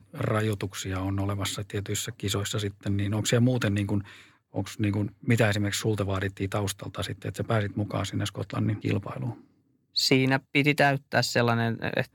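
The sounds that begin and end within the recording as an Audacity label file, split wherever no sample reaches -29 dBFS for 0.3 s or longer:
4.560000	9.310000	sound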